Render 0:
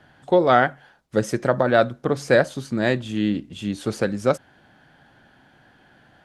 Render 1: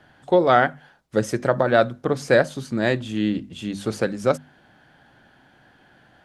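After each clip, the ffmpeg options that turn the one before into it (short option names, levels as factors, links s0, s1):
-af "bandreject=f=50:t=h:w=6,bandreject=f=100:t=h:w=6,bandreject=f=150:t=h:w=6,bandreject=f=200:t=h:w=6,bandreject=f=250:t=h:w=6"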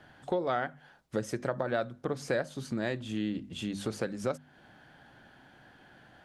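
-af "acompressor=threshold=0.0282:ratio=2.5,volume=0.794"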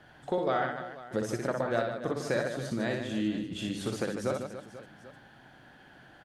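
-af "aecho=1:1:60|150|285|487.5|791.2:0.631|0.398|0.251|0.158|0.1"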